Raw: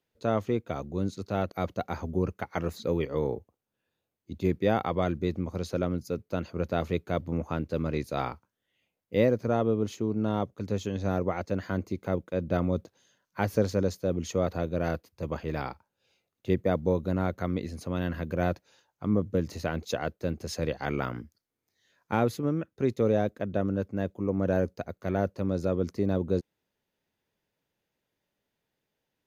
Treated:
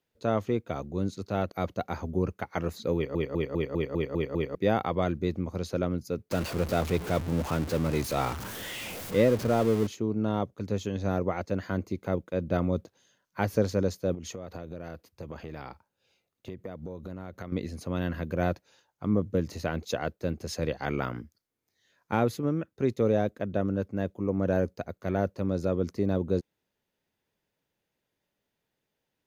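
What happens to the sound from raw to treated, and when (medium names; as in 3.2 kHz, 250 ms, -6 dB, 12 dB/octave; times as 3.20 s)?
2.95 s: stutter in place 0.20 s, 8 plays
6.31–9.87 s: jump at every zero crossing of -31.5 dBFS
14.14–17.52 s: compression 16:1, threshold -34 dBFS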